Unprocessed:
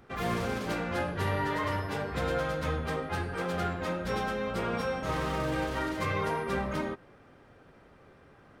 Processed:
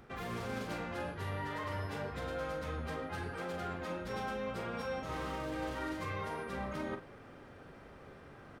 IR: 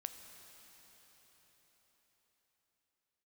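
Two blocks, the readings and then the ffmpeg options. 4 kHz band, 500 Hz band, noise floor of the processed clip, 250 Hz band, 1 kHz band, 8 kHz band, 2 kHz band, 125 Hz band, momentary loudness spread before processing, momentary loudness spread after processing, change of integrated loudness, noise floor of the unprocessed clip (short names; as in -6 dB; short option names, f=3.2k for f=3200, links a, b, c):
-7.5 dB, -7.5 dB, -54 dBFS, -7.5 dB, -7.5 dB, -8.0 dB, -7.5 dB, -8.0 dB, 3 LU, 15 LU, -7.5 dB, -57 dBFS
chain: -filter_complex "[0:a]areverse,acompressor=threshold=-40dB:ratio=6,areverse,asplit=2[a][b];[b]adelay=42,volume=-8dB[c];[a][c]amix=inputs=2:normalize=0,volume=2.5dB"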